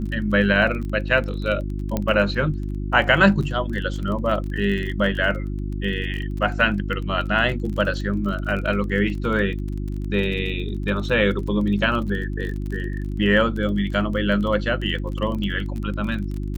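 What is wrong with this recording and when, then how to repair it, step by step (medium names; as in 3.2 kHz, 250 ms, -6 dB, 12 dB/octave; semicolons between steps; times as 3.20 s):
crackle 26 per s -29 dBFS
hum 50 Hz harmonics 7 -27 dBFS
1.97 s: pop -10 dBFS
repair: de-click; de-hum 50 Hz, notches 7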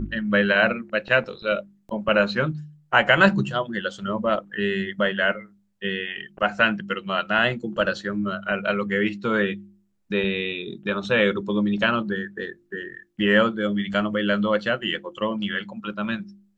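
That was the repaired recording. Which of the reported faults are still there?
nothing left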